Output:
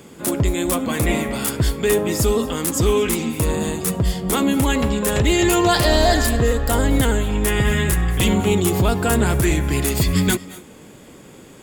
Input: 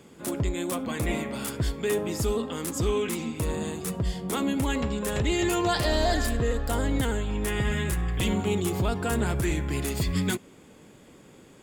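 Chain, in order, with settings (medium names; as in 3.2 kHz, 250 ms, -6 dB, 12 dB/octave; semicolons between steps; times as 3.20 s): treble shelf 11 kHz +7.5 dB; reverberation RT60 0.20 s, pre-delay 192 ms, DRR 17 dB; trim +8.5 dB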